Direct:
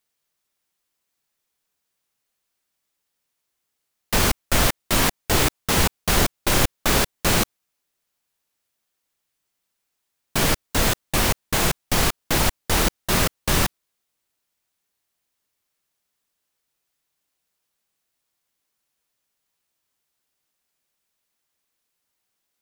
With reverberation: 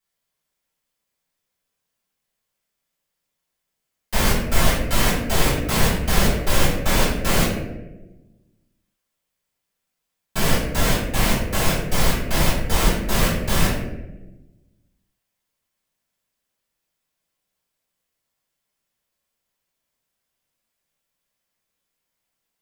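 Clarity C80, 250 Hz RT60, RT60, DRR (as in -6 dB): 5.5 dB, 1.6 s, 1.1 s, -8.0 dB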